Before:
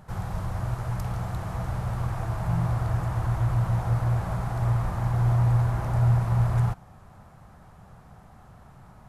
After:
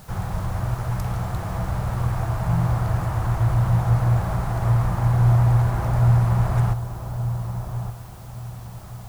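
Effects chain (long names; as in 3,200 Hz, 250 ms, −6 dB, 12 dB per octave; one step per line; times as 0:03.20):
in parallel at −4 dB: bit-depth reduction 8 bits, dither triangular
on the sum: delay with a low-pass on its return 1,175 ms, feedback 33%, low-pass 1,300 Hz, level −9 dB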